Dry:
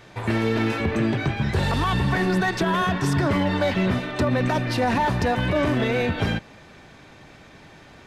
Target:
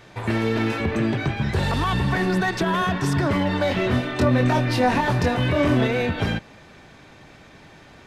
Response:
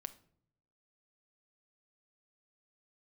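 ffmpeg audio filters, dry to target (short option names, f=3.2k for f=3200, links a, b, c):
-filter_complex "[0:a]asettb=1/sr,asplit=3[a][b][c];[a]atrim=end=3.684[d];[b]atrim=start=3.68:end=5.87,asetpts=PTS-STARTPTS,afade=t=in:d=0.004:c=qsin,afade=t=out:st=2.186:d=0.004:c=qsin,asplit=2[e][f];[f]adelay=24,volume=-3.5dB[g];[e][g]amix=inputs=2:normalize=0,atrim=end_sample=96579[h];[c]atrim=start=5.866[i];[d][h]acrossfade=d=0.004:c1=hsin:c2=qsin[j];[j][i]acrossfade=d=0.004:c1=qsin:c2=hsin"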